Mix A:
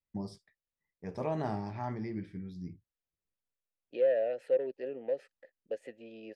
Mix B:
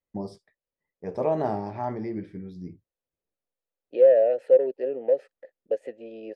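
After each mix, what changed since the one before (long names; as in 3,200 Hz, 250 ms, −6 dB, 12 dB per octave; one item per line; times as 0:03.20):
master: add parametric band 530 Hz +11 dB 2 octaves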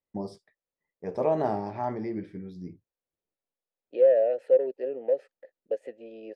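second voice −3.0 dB
master: add low-shelf EQ 100 Hz −6.5 dB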